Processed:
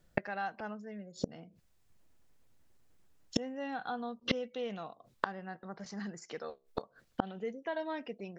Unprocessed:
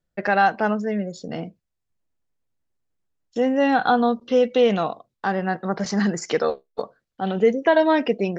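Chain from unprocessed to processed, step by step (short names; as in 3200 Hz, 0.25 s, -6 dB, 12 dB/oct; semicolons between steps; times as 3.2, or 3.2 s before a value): flipped gate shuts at -25 dBFS, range -30 dB; dynamic EQ 390 Hz, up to -3 dB, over -59 dBFS, Q 0.79; gain +11.5 dB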